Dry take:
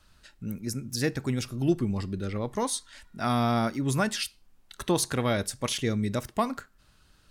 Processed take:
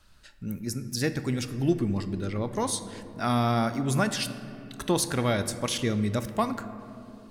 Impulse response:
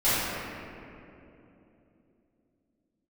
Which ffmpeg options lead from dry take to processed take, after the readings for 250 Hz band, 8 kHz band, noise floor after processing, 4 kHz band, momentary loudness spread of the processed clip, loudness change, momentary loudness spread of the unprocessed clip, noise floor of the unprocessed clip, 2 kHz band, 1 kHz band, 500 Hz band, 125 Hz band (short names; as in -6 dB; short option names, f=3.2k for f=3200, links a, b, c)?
+1.0 dB, +0.5 dB, -51 dBFS, +0.5 dB, 15 LU, +1.0 dB, 9 LU, -62 dBFS, +0.5 dB, +0.5 dB, +0.5 dB, +1.5 dB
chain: -filter_complex "[0:a]asplit=2[a][b];[1:a]atrim=start_sample=2205[c];[b][c]afir=irnorm=-1:irlink=0,volume=-26.5dB[d];[a][d]amix=inputs=2:normalize=0"